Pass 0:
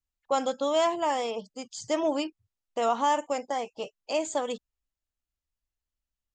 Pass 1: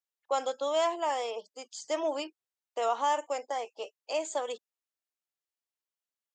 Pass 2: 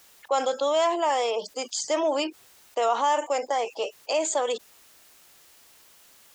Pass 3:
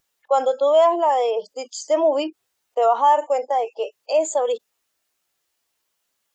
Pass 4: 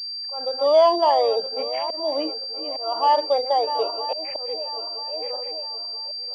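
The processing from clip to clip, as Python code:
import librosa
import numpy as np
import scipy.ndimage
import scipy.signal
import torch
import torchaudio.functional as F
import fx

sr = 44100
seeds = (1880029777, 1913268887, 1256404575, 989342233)

y1 = scipy.signal.sosfilt(scipy.signal.butter(4, 360.0, 'highpass', fs=sr, output='sos'), x)
y1 = y1 * librosa.db_to_amplitude(-3.0)
y2 = fx.env_flatten(y1, sr, amount_pct=50)
y2 = y2 * librosa.db_to_amplitude(4.0)
y3 = fx.spectral_expand(y2, sr, expansion=1.5)
y3 = y3 * librosa.db_to_amplitude(6.0)
y4 = fx.reverse_delay_fb(y3, sr, ms=488, feedback_pct=61, wet_db=-12)
y4 = fx.auto_swell(y4, sr, attack_ms=420.0)
y4 = fx.pwm(y4, sr, carrier_hz=4700.0)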